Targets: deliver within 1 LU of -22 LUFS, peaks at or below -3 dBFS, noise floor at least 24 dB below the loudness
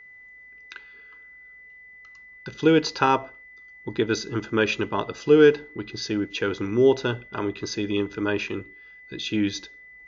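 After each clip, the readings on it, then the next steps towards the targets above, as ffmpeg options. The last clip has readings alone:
steady tone 2000 Hz; tone level -45 dBFS; loudness -24.0 LUFS; peak -5.0 dBFS; loudness target -22.0 LUFS
-> -af "bandreject=f=2k:w=30"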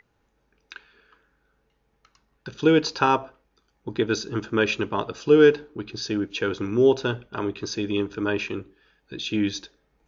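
steady tone none; loudness -23.5 LUFS; peak -5.0 dBFS; loudness target -22.0 LUFS
-> -af "volume=1.5dB"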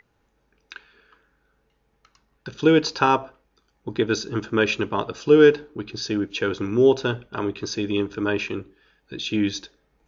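loudness -22.0 LUFS; peak -3.5 dBFS; noise floor -69 dBFS

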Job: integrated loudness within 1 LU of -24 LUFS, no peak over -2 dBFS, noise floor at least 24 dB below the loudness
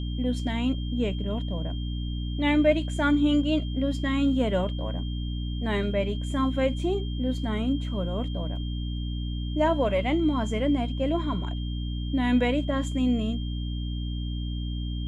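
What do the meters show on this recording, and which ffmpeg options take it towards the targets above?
hum 60 Hz; harmonics up to 300 Hz; hum level -28 dBFS; steady tone 3200 Hz; tone level -43 dBFS; loudness -27.5 LUFS; peak -9.0 dBFS; loudness target -24.0 LUFS
-> -af "bandreject=f=60:t=h:w=4,bandreject=f=120:t=h:w=4,bandreject=f=180:t=h:w=4,bandreject=f=240:t=h:w=4,bandreject=f=300:t=h:w=4"
-af "bandreject=f=3.2k:w=30"
-af "volume=3.5dB"

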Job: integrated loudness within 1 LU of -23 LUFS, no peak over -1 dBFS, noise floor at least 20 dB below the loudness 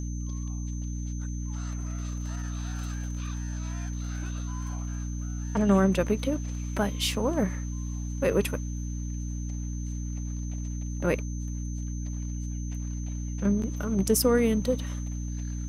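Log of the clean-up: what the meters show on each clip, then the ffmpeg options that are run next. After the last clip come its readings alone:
hum 60 Hz; harmonics up to 300 Hz; hum level -30 dBFS; steady tone 6200 Hz; tone level -46 dBFS; loudness -30.5 LUFS; peak -9.5 dBFS; loudness target -23.0 LUFS
-> -af "bandreject=f=60:t=h:w=4,bandreject=f=120:t=h:w=4,bandreject=f=180:t=h:w=4,bandreject=f=240:t=h:w=4,bandreject=f=300:t=h:w=4"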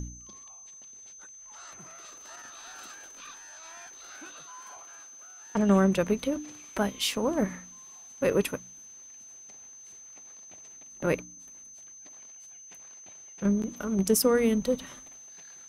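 hum none; steady tone 6200 Hz; tone level -46 dBFS
-> -af "bandreject=f=6.2k:w=30"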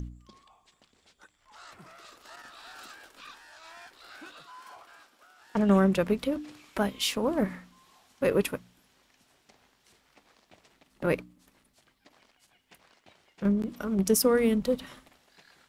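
steady tone none; loudness -27.5 LUFS; peak -10.0 dBFS; loudness target -23.0 LUFS
-> -af "volume=4.5dB"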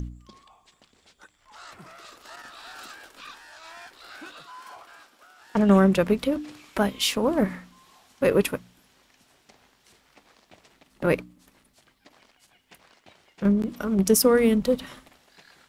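loudness -23.0 LUFS; peak -5.5 dBFS; noise floor -65 dBFS

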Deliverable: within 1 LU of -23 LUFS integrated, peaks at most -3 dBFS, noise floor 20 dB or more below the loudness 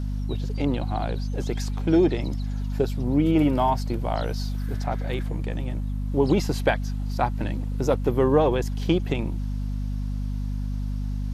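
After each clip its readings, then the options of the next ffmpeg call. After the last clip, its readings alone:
hum 50 Hz; harmonics up to 250 Hz; hum level -25 dBFS; loudness -25.5 LUFS; peak -8.0 dBFS; loudness target -23.0 LUFS
-> -af "bandreject=f=50:t=h:w=4,bandreject=f=100:t=h:w=4,bandreject=f=150:t=h:w=4,bandreject=f=200:t=h:w=4,bandreject=f=250:t=h:w=4"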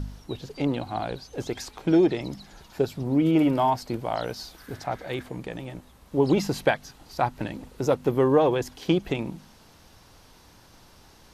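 hum none; loudness -26.0 LUFS; peak -8.5 dBFS; loudness target -23.0 LUFS
-> -af "volume=3dB"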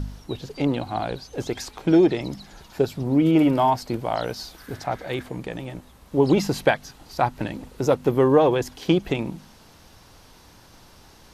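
loudness -23.0 LUFS; peak -5.5 dBFS; noise floor -51 dBFS

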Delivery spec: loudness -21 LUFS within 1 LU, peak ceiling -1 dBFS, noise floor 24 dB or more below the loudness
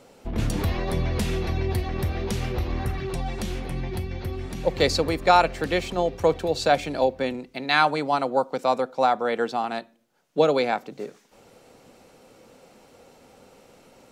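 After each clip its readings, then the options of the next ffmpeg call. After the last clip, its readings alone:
loudness -25.0 LUFS; peak -3.0 dBFS; loudness target -21.0 LUFS
-> -af "volume=4dB,alimiter=limit=-1dB:level=0:latency=1"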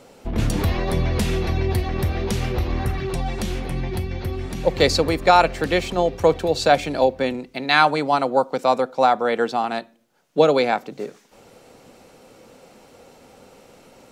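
loudness -21.0 LUFS; peak -1.0 dBFS; noise floor -52 dBFS

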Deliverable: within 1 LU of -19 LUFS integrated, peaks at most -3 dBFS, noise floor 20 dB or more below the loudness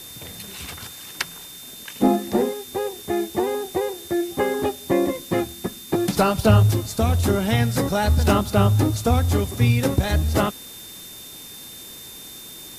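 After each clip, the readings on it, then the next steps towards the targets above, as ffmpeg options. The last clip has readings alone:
steady tone 3600 Hz; tone level -42 dBFS; noise floor -40 dBFS; noise floor target -42 dBFS; loudness -21.5 LUFS; peak -3.5 dBFS; loudness target -19.0 LUFS
-> -af "bandreject=f=3.6k:w=30"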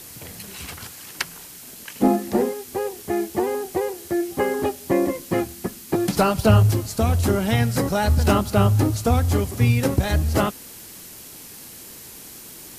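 steady tone none; noise floor -41 dBFS; noise floor target -42 dBFS
-> -af "afftdn=nr=6:nf=-41"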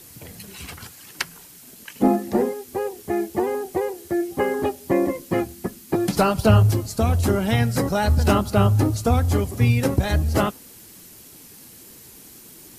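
noise floor -46 dBFS; loudness -21.5 LUFS; peak -3.5 dBFS; loudness target -19.0 LUFS
-> -af "volume=2.5dB,alimiter=limit=-3dB:level=0:latency=1"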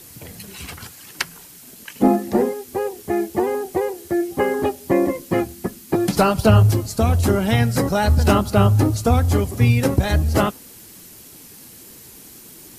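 loudness -19.5 LUFS; peak -3.0 dBFS; noise floor -43 dBFS

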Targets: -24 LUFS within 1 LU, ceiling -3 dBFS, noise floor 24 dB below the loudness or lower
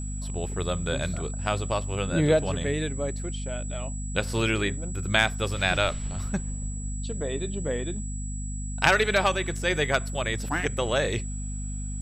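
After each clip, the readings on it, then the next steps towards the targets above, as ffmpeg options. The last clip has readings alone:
hum 50 Hz; harmonics up to 250 Hz; hum level -30 dBFS; steady tone 7800 Hz; tone level -40 dBFS; loudness -27.5 LUFS; peak -5.0 dBFS; loudness target -24.0 LUFS
-> -af "bandreject=f=50:t=h:w=4,bandreject=f=100:t=h:w=4,bandreject=f=150:t=h:w=4,bandreject=f=200:t=h:w=4,bandreject=f=250:t=h:w=4"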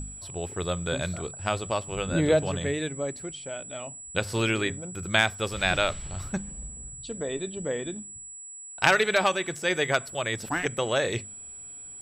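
hum none; steady tone 7800 Hz; tone level -40 dBFS
-> -af "bandreject=f=7.8k:w=30"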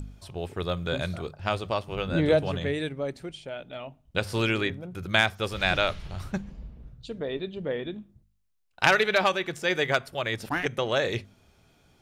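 steady tone none; loudness -27.5 LUFS; peak -5.0 dBFS; loudness target -24.0 LUFS
-> -af "volume=3.5dB,alimiter=limit=-3dB:level=0:latency=1"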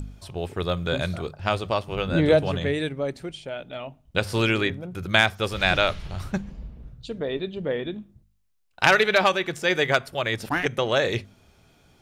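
loudness -24.0 LUFS; peak -3.0 dBFS; noise floor -61 dBFS

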